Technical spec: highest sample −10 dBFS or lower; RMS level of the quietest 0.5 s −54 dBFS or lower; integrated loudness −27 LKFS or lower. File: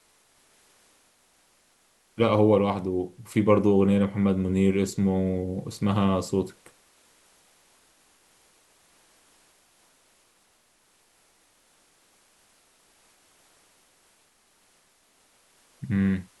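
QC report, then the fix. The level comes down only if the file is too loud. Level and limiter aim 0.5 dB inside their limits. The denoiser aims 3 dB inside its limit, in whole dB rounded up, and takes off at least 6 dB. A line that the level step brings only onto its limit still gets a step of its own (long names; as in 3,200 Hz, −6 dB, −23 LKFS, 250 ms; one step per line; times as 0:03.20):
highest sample −8.0 dBFS: out of spec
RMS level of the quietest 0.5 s −65 dBFS: in spec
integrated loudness −24.5 LKFS: out of spec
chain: level −3 dB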